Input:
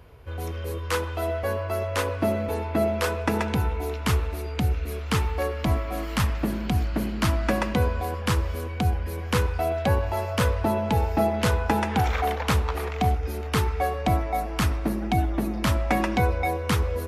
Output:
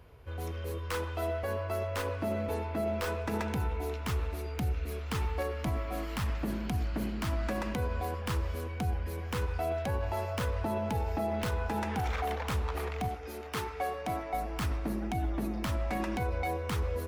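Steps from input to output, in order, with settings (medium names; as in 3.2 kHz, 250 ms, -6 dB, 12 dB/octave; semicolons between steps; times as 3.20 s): tracing distortion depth 0.089 ms; 13.08–14.34 s: high-pass 290 Hz 6 dB/octave; peak limiter -18 dBFS, peak gain reduction 8.5 dB; trim -5.5 dB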